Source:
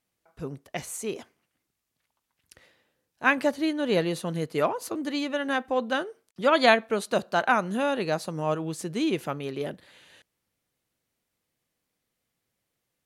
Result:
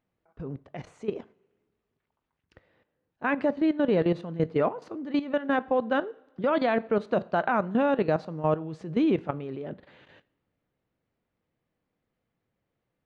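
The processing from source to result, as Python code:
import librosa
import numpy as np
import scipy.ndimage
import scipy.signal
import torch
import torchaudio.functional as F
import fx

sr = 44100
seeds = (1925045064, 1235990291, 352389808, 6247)

y = fx.level_steps(x, sr, step_db=14)
y = fx.spacing_loss(y, sr, db_at_10k=40)
y = fx.rev_double_slope(y, sr, seeds[0], early_s=0.48, late_s=1.9, knee_db=-18, drr_db=18.0)
y = y * librosa.db_to_amplitude(8.0)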